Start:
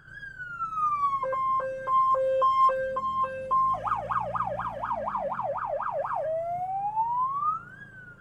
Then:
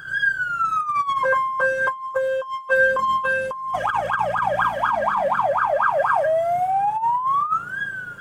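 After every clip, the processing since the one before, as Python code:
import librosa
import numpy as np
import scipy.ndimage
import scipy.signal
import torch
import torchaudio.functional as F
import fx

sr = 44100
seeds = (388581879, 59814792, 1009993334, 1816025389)

y = fx.tilt_eq(x, sr, slope=2.0)
y = fx.over_compress(y, sr, threshold_db=-29.0, ratio=-0.5)
y = fx.small_body(y, sr, hz=(1600.0, 3300.0), ring_ms=40, db=11)
y = y * 10.0 ** (8.5 / 20.0)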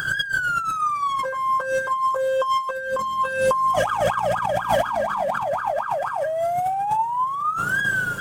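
y = fx.high_shelf(x, sr, hz=3500.0, db=7.5)
y = fx.over_compress(y, sr, threshold_db=-27.0, ratio=-1.0)
y = fx.dynamic_eq(y, sr, hz=1800.0, q=0.89, threshold_db=-36.0, ratio=4.0, max_db=-5)
y = y * 10.0 ** (6.0 / 20.0)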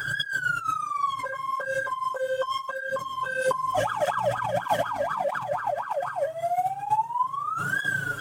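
y = x + 0.52 * np.pad(x, (int(7.0 * sr / 1000.0), 0))[:len(x)]
y = fx.flanger_cancel(y, sr, hz=1.6, depth_ms=6.4)
y = y * 10.0 ** (-2.5 / 20.0)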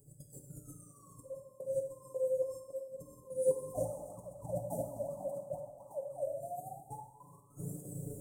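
y = scipy.signal.sosfilt(scipy.signal.ellip(3, 1.0, 60, [510.0, 8300.0], 'bandstop', fs=sr, output='sos'), x)
y = fx.step_gate(y, sr, bpm=150, pattern='..xx.xxxxxxx.x', floor_db=-12.0, edge_ms=4.5)
y = fx.rev_plate(y, sr, seeds[0], rt60_s=1.1, hf_ratio=0.9, predelay_ms=0, drr_db=2.5)
y = y * 10.0 ** (-5.0 / 20.0)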